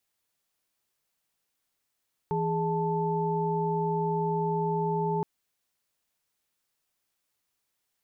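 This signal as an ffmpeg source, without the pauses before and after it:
-f lavfi -i "aevalsrc='0.0335*(sin(2*PI*164.81*t)+sin(2*PI*415.3*t)+sin(2*PI*880*t))':d=2.92:s=44100"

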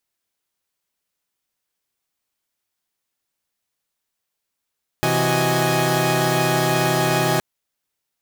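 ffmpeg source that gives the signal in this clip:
-f lavfi -i "aevalsrc='0.0891*((2*mod(130.81*t,1)-1)+(2*mod(164.81*t,1)-1)+(2*mod(369.99*t,1)-1)+(2*mod(622.25*t,1)-1)+(2*mod(830.61*t,1)-1))':d=2.37:s=44100"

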